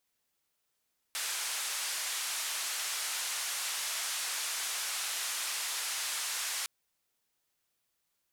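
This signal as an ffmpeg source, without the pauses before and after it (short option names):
-f lavfi -i "anoisesrc=c=white:d=5.51:r=44100:seed=1,highpass=f=980,lowpass=f=10000,volume=-26.8dB"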